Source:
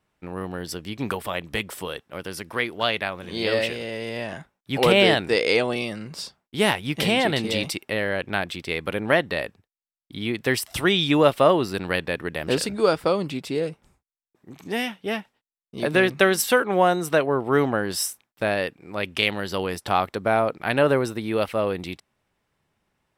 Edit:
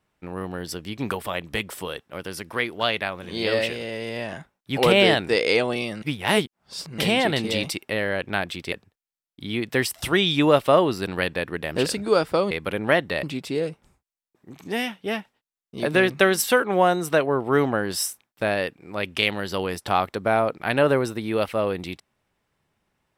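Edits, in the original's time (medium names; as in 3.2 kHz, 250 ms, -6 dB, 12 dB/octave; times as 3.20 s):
6.02–6.98 s: reverse
8.72–9.44 s: move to 13.23 s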